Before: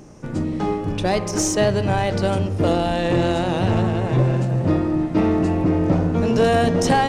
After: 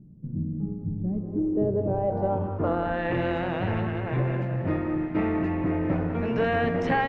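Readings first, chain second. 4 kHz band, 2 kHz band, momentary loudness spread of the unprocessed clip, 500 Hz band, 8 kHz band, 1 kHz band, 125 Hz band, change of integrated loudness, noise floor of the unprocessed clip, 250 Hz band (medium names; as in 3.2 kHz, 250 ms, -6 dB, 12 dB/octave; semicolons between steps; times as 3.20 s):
-15.0 dB, -4.0 dB, 6 LU, -7.0 dB, under -35 dB, -7.0 dB, -8.0 dB, -7.5 dB, -28 dBFS, -7.0 dB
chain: speakerphone echo 190 ms, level -9 dB; low-pass sweep 180 Hz -> 2.1 kHz, 0.97–3.15 s; trim -8.5 dB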